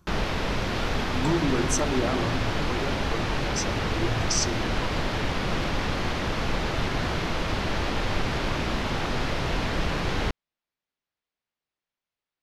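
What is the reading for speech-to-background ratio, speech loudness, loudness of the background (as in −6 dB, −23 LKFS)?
−2.5 dB, −30.5 LKFS, −28.0 LKFS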